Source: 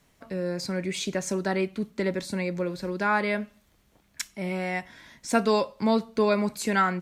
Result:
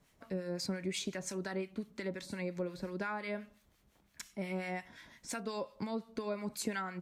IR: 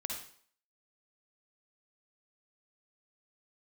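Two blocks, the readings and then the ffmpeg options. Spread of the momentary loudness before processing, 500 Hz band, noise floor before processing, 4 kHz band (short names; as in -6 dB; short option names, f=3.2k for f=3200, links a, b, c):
10 LU, -12.5 dB, -65 dBFS, -9.0 dB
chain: -filter_complex "[0:a]acompressor=threshold=-28dB:ratio=12,acrossover=split=1100[a][b];[a]aeval=exprs='val(0)*(1-0.7/2+0.7/2*cos(2*PI*5.7*n/s))':c=same[c];[b]aeval=exprs='val(0)*(1-0.7/2-0.7/2*cos(2*PI*5.7*n/s))':c=same[d];[c][d]amix=inputs=2:normalize=0,volume=-2.5dB"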